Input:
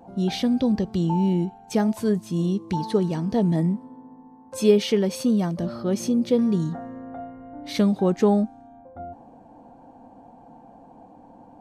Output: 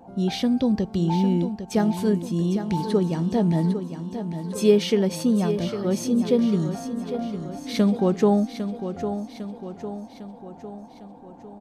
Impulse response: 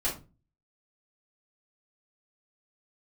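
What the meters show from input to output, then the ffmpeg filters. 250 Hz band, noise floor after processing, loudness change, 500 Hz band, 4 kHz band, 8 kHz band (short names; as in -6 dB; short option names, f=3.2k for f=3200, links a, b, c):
+0.5 dB, -45 dBFS, -0.5 dB, +0.5 dB, +0.5 dB, +0.5 dB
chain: -af "aecho=1:1:803|1606|2409|3212|4015|4818:0.335|0.181|0.0977|0.0527|0.0285|0.0154"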